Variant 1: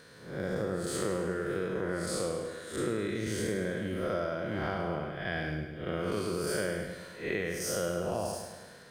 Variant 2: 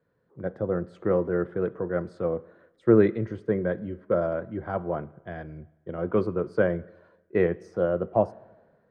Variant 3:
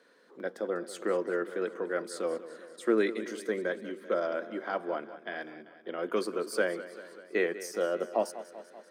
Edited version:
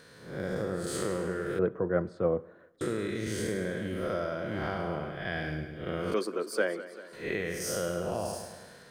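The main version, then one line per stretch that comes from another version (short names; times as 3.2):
1
1.59–2.81 from 2
6.14–7.13 from 3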